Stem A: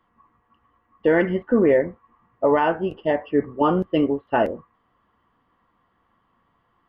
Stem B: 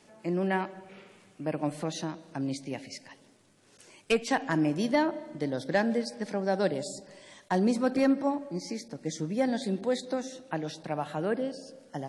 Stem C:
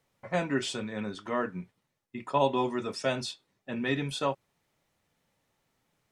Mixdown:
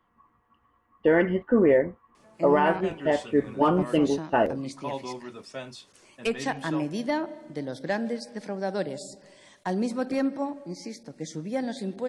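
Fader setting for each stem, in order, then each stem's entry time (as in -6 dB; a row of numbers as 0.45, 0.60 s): -2.5, -2.0, -8.5 dB; 0.00, 2.15, 2.50 s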